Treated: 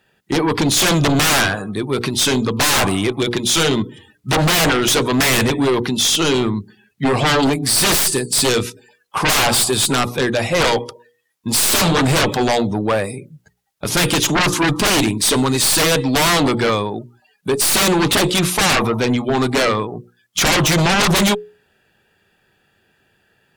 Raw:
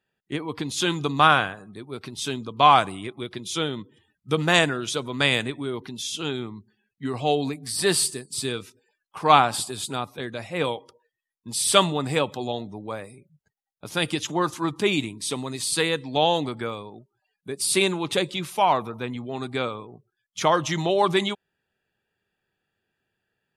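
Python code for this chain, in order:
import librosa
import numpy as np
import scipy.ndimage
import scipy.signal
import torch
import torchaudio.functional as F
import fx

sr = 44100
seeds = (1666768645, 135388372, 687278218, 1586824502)

y = fx.hum_notches(x, sr, base_hz=60, count=8)
y = fx.tube_stage(y, sr, drive_db=13.0, bias=0.6)
y = fx.fold_sine(y, sr, drive_db=19, ceiling_db=-10.0)
y = y * librosa.db_to_amplitude(-1.5)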